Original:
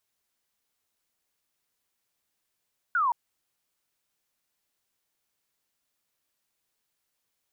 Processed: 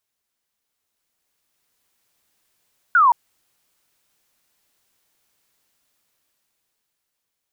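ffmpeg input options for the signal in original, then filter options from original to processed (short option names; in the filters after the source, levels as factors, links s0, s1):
-f lavfi -i "aevalsrc='0.0841*clip(t/0.002,0,1)*clip((0.17-t)/0.002,0,1)*sin(2*PI*1500*0.17/log(910/1500)*(exp(log(910/1500)*t/0.17)-1))':d=0.17:s=44100"
-af "dynaudnorm=f=270:g=11:m=3.55"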